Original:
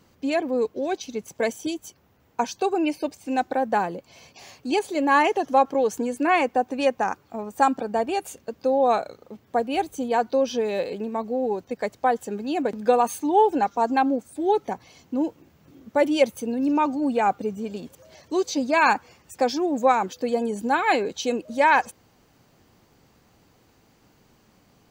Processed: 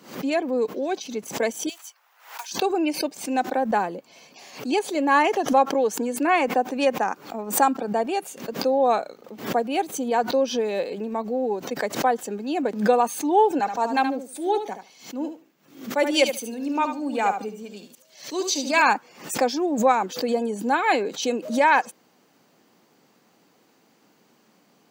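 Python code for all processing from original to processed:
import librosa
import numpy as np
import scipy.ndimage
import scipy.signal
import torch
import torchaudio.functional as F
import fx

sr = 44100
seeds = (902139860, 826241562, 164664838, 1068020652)

y = fx.chain(x, sr, fx.block_float(bits=5),
    fx.highpass(hz=870.0, slope=24),
    fx.band_squash(depth_pct=70), at=(1.69, 2.51))
y = fx.chain(y, sr, fx.tilt_shelf(db=-4.5, hz=1400.0),
    fx.echo_feedback(ms=74, feedback_pct=17, wet_db=-8.0),
    fx.band_widen(depth_pct=40), at=(13.59, 18.82))
y = scipy.signal.sosfilt(scipy.signal.butter(4, 180.0, 'highpass', fs=sr, output='sos'), y)
y = fx.pre_swell(y, sr, db_per_s=120.0)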